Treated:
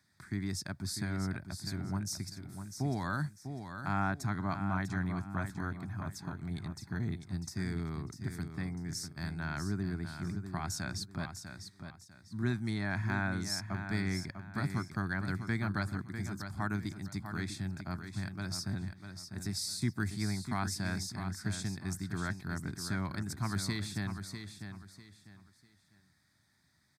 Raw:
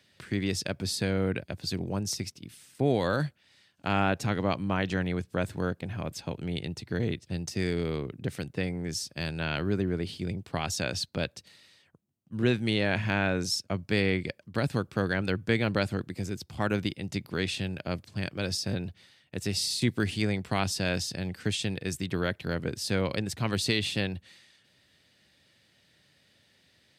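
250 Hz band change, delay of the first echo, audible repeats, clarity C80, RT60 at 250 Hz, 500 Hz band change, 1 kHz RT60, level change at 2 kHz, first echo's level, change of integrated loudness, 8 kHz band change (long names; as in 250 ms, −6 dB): −5.5 dB, 648 ms, 3, no reverb audible, no reverb audible, −14.5 dB, no reverb audible, −6.5 dB, −8.5 dB, −6.5 dB, −4.5 dB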